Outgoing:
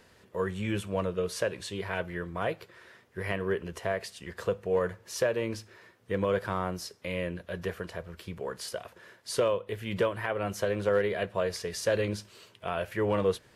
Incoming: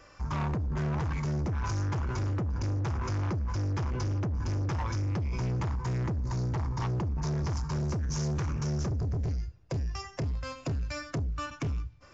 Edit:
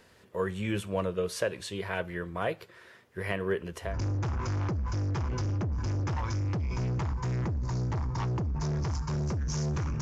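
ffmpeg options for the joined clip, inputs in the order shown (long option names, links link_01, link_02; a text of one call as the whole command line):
ffmpeg -i cue0.wav -i cue1.wav -filter_complex "[0:a]apad=whole_dur=10.01,atrim=end=10.01,atrim=end=3.97,asetpts=PTS-STARTPTS[link_01];[1:a]atrim=start=2.43:end=8.63,asetpts=PTS-STARTPTS[link_02];[link_01][link_02]acrossfade=duration=0.16:curve1=tri:curve2=tri" out.wav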